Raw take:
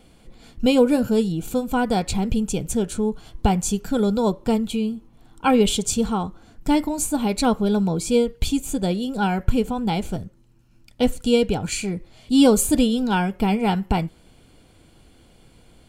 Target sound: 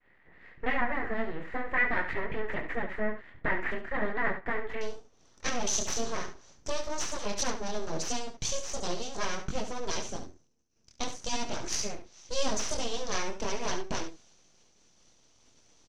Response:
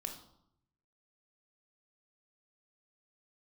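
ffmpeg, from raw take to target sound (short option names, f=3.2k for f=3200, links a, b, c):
-af "agate=range=-33dB:threshold=-47dB:ratio=3:detection=peak,highpass=f=79:p=1,acompressor=threshold=-20dB:ratio=3,flanger=delay=19:depth=7.6:speed=0.42,aeval=exprs='abs(val(0))':c=same,asetnsamples=n=441:p=0,asendcmd='4.81 lowpass f 6000',lowpass=f=1.9k:t=q:w=11,aecho=1:1:70:0.335,volume=-4dB"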